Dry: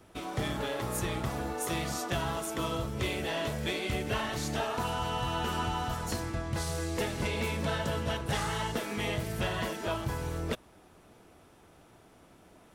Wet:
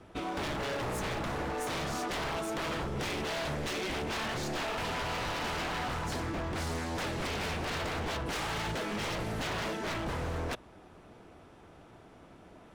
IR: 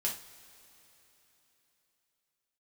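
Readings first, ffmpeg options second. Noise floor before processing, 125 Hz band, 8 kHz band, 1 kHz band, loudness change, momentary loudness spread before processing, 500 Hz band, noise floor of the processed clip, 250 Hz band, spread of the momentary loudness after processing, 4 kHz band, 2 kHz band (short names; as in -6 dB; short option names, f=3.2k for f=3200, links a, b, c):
-59 dBFS, -4.0 dB, -3.0 dB, -0.5 dB, -1.5 dB, 3 LU, -1.5 dB, -55 dBFS, -2.0 dB, 1 LU, -0.5 dB, +0.5 dB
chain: -af "acontrast=47,aemphasis=mode=reproduction:type=50fm,aeval=exprs='0.0447*(abs(mod(val(0)/0.0447+3,4)-2)-1)':c=same,volume=-2.5dB"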